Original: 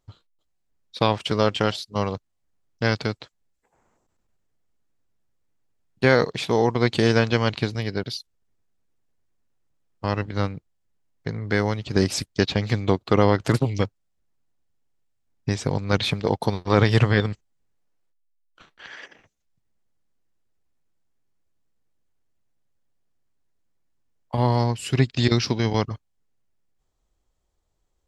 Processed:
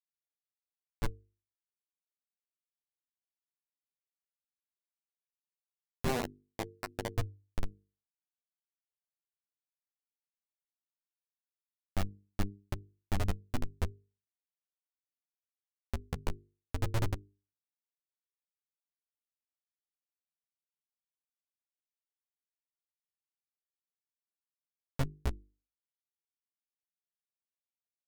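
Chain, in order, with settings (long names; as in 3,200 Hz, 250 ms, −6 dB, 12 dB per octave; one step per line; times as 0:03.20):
auto-filter notch square 0.52 Hz 690–2,900 Hz
comparator with hysteresis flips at −14.5 dBFS
mains-hum notches 50/100/150/200/250/300/350/400/450 Hz
flanger 0.1 Hz, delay 5.1 ms, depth 9.5 ms, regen +6%
level +3 dB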